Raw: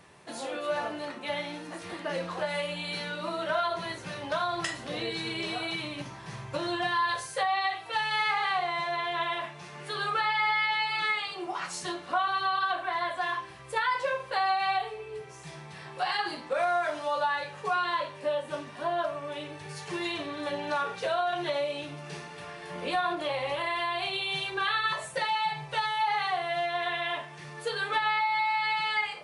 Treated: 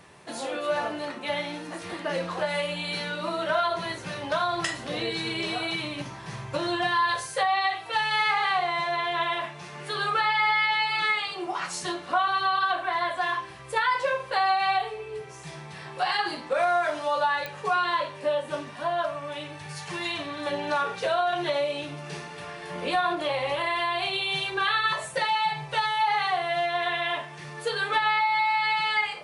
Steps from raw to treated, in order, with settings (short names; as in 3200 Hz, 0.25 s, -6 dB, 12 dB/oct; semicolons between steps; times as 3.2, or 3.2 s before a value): 18.74–20.46 bell 400 Hz -10 dB 0.57 oct; pops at 17.46, -21 dBFS; gain +3.5 dB